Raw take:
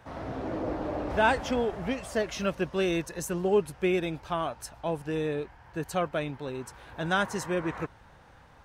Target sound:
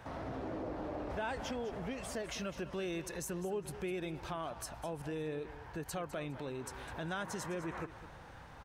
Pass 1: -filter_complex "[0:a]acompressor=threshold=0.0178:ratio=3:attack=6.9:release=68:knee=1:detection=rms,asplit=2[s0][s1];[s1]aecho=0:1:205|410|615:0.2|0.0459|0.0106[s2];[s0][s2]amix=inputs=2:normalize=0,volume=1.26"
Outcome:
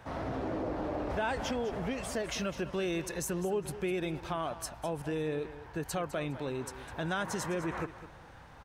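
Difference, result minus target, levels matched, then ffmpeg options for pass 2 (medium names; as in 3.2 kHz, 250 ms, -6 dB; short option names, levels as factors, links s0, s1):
compression: peak gain reduction -5.5 dB
-filter_complex "[0:a]acompressor=threshold=0.00668:ratio=3:attack=6.9:release=68:knee=1:detection=rms,asplit=2[s0][s1];[s1]aecho=0:1:205|410|615:0.2|0.0459|0.0106[s2];[s0][s2]amix=inputs=2:normalize=0,volume=1.26"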